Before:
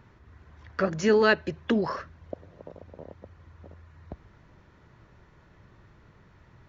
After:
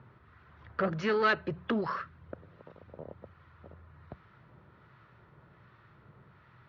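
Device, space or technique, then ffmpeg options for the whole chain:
guitar amplifier with harmonic tremolo: -filter_complex "[0:a]acrossover=split=970[s0][s1];[s0]aeval=exprs='val(0)*(1-0.5/2+0.5/2*cos(2*PI*1.3*n/s))':c=same[s2];[s1]aeval=exprs='val(0)*(1-0.5/2-0.5/2*cos(2*PI*1.3*n/s))':c=same[s3];[s2][s3]amix=inputs=2:normalize=0,asoftclip=type=tanh:threshold=0.075,highpass=91,equalizer=f=130:t=q:w=4:g=5,equalizer=f=280:t=q:w=4:g=-4,equalizer=f=1300:t=q:w=4:g=7,lowpass=f=4100:w=0.5412,lowpass=f=4100:w=1.3066,asettb=1/sr,asplit=3[s4][s5][s6];[s4]atrim=end=1.844[s7];[s5]atrim=start=1.84:end=2.89,asetpts=PTS-STARTPTS,afade=t=in:d=0.004:c=qsin,afade=t=out:st=1.046:d=0.004:c=qsin,equalizer=f=640:t=o:w=0.89:g=-5.5[s8];[s6]atrim=start=2.886[s9];[s7][s8]acrossfade=d=0.004:c1=hsin:c2=qsin[s10];[s10][s9]acrossfade=d=0.004:c1=qsin:c2=hsin,bandreject=f=90.82:t=h:w=4,bandreject=f=181.64:t=h:w=4"

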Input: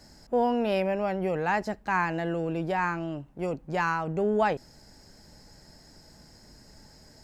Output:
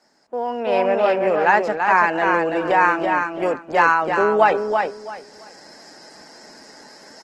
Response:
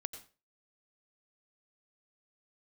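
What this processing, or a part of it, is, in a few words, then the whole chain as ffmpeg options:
video call: -filter_complex "[0:a]highpass=180,lowpass=5800,aemphasis=mode=production:type=riaa,acrossover=split=160 2200:gain=0.126 1 0.224[s0][s1][s2];[s0][s1][s2]amix=inputs=3:normalize=0,aecho=1:1:334|668|1002:0.562|0.118|0.0248,dynaudnorm=f=210:g=7:m=5.62" -ar 48000 -c:a libopus -b:a 16k

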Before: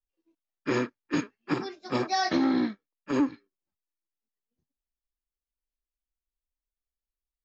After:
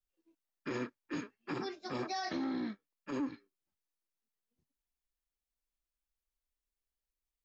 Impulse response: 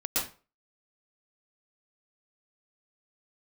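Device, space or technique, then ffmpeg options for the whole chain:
stacked limiters: -af "alimiter=limit=0.106:level=0:latency=1,alimiter=level_in=1.06:limit=0.0631:level=0:latency=1:release=205,volume=0.944,alimiter=level_in=1.68:limit=0.0631:level=0:latency=1:release=26,volume=0.596,volume=0.891"

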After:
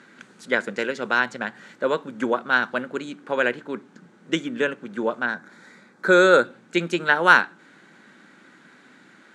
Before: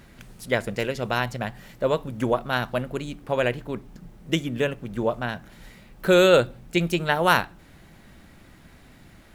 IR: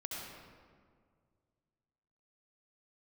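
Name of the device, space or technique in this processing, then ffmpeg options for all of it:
television speaker: -filter_complex "[0:a]highpass=f=210:w=0.5412,highpass=f=210:w=1.3066,equalizer=f=670:t=q:w=4:g=-7,equalizer=f=1500:t=q:w=4:g=9,equalizer=f=2800:t=q:w=4:g=-3,equalizer=f=5200:t=q:w=4:g=-5,lowpass=f=7800:w=0.5412,lowpass=f=7800:w=1.3066,asettb=1/sr,asplit=3[s0][s1][s2];[s0]atrim=end=5.264[s3];[s1]atrim=start=5.26:end=6.45,asetpts=PTS-STARTPTS,afade=t=in:d=0.004:c=qsin,afade=t=out:st=1.186:d=0.004:c=qsin,equalizer=f=2900:w=4.5:g=-14[s4];[s2]atrim=start=6.446[s5];[s3][s4]acrossfade=d=0.004:c1=hsin:c2=qsin[s6];[s6][s5]acrossfade=d=0.004:c1=qsin:c2=hsin,volume=1.19"

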